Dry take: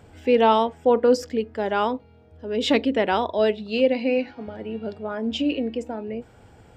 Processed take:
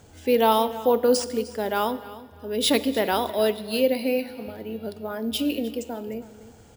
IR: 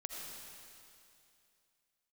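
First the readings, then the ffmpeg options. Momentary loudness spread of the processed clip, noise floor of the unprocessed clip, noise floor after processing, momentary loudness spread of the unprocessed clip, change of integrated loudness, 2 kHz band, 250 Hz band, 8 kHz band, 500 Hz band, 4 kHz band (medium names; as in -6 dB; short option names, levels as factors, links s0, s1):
14 LU, -52 dBFS, -50 dBFS, 14 LU, -1.5 dB, -2.5 dB, -2.0 dB, no reading, -2.0 dB, +2.0 dB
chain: -filter_complex "[0:a]aecho=1:1:305|610:0.133|0.0333,aexciter=amount=4.1:drive=1.5:freq=3700,asplit=2[s0][s1];[1:a]atrim=start_sample=2205,asetrate=79380,aresample=44100[s2];[s1][s2]afir=irnorm=-1:irlink=0,volume=0.531[s3];[s0][s3]amix=inputs=2:normalize=0,acrusher=samples=3:mix=1:aa=0.000001,volume=0.668"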